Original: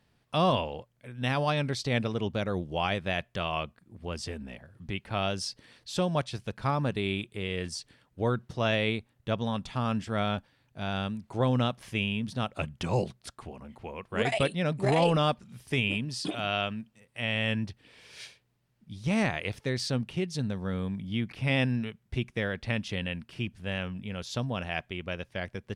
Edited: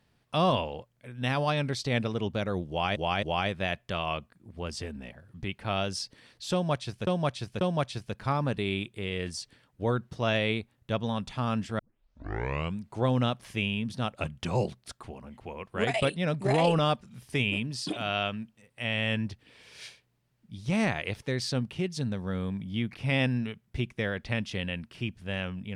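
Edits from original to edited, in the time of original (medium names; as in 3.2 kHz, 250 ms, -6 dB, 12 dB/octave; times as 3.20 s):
2.69–2.96 s: loop, 3 plays
5.99–6.53 s: loop, 3 plays
10.17 s: tape start 1.03 s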